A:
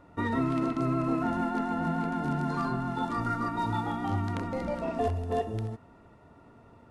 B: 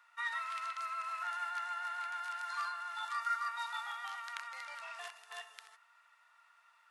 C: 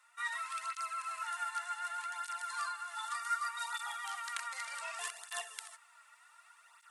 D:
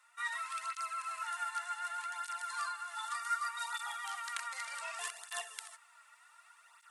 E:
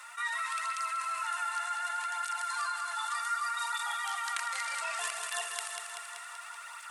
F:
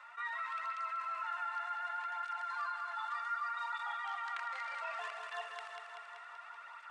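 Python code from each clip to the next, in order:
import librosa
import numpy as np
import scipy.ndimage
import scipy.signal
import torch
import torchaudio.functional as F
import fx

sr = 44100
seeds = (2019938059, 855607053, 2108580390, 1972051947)

y1 = scipy.signal.sosfilt(scipy.signal.cheby2(4, 70, 290.0, 'highpass', fs=sr, output='sos'), x)
y1 = F.gain(torch.from_numpy(y1), 1.0).numpy()
y2 = fx.rider(y1, sr, range_db=4, speed_s=2.0)
y2 = fx.peak_eq(y2, sr, hz=8800.0, db=15.0, octaves=0.81)
y2 = fx.flanger_cancel(y2, sr, hz=0.66, depth_ms=4.3)
y2 = F.gain(torch.from_numpy(y2), 3.0).numpy()
y3 = y2
y4 = fx.echo_feedback(y3, sr, ms=191, feedback_pct=55, wet_db=-9.0)
y4 = fx.env_flatten(y4, sr, amount_pct=50)
y5 = fx.spacing_loss(y4, sr, db_at_10k=35)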